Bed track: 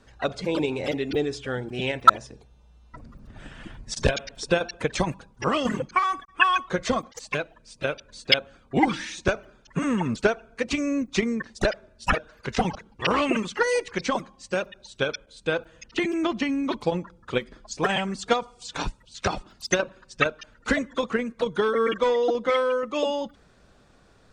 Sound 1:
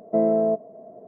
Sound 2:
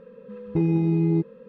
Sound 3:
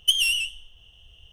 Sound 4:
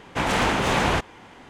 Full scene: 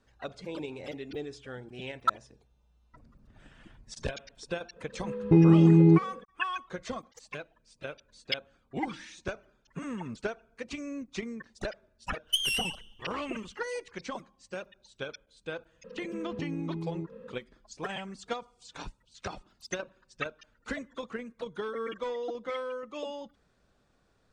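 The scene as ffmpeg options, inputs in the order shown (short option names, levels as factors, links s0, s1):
-filter_complex "[2:a]asplit=2[s0][s1];[0:a]volume=0.237[s2];[s0]dynaudnorm=f=170:g=3:m=3.16[s3];[s1]acompressor=threshold=0.02:ratio=6:attack=3.2:release=140:knee=1:detection=peak[s4];[s3]atrim=end=1.48,asetpts=PTS-STARTPTS,volume=0.501,afade=t=in:d=0.004:c=hsin,afade=t=out:st=1.476:d=0.004:c=hsin,adelay=4760[s5];[3:a]atrim=end=1.32,asetpts=PTS-STARTPTS,volume=0.422,afade=t=in:d=0.05,afade=t=out:st=1.27:d=0.05,adelay=12250[s6];[s4]atrim=end=1.48,asetpts=PTS-STARTPTS,volume=0.944,afade=t=in:d=0.004:c=hsin,afade=t=out:st=1.476:d=0.004:c=hsin,adelay=15840[s7];[s2][s5][s6][s7]amix=inputs=4:normalize=0"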